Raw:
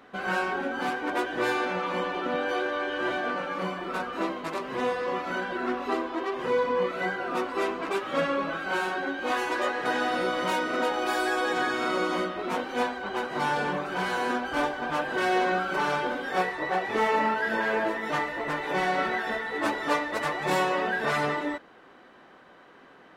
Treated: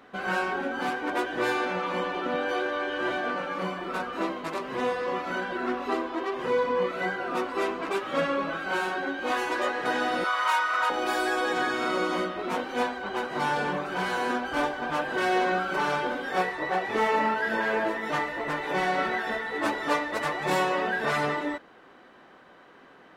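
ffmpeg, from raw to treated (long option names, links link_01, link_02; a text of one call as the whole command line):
ffmpeg -i in.wav -filter_complex "[0:a]asettb=1/sr,asplit=3[link_01][link_02][link_03];[link_01]atrim=end=10.244[link_04];[link_02]atrim=start=10.24:end=10.9,asetpts=PTS-STARTPTS,afade=type=in:duration=0.004:curve=qsin,afade=type=out:start_time=0.656:duration=0.004:curve=qsin,highpass=frequency=1100:width_type=q:width=2.5[link_05];[link_03]atrim=start=10.896[link_06];[link_04][link_05]acrossfade=duration=0.004:curve1=hsin:curve2=qsin[link_07];[link_07][link_06]acrossfade=duration=0.004:curve1=qsin:curve2=hsin" out.wav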